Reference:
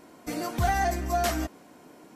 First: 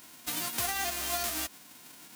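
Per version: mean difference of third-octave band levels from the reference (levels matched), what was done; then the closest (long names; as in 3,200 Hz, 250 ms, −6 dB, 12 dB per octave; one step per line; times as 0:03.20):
9.5 dB: spectral envelope flattened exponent 0.1
downward compressor 4 to 1, threshold −30 dBFS, peak gain reduction 9 dB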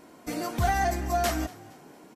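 1.0 dB: on a send: echo with shifted repeats 232 ms, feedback 40%, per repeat +40 Hz, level −21 dB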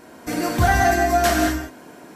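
3.5 dB: parametric band 1,600 Hz +7.5 dB 0.21 octaves
reverb whose tail is shaped and stops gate 250 ms flat, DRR 0.5 dB
level +6 dB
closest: second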